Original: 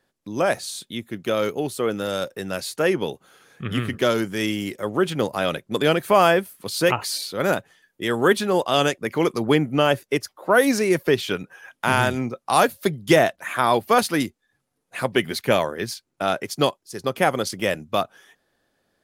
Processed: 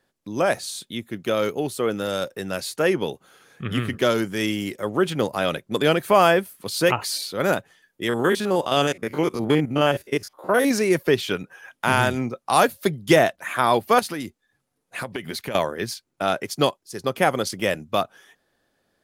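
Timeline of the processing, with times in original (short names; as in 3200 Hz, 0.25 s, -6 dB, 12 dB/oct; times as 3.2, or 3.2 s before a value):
8.09–10.71 stepped spectrum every 50 ms
13.99–15.55 compressor 12:1, threshold -25 dBFS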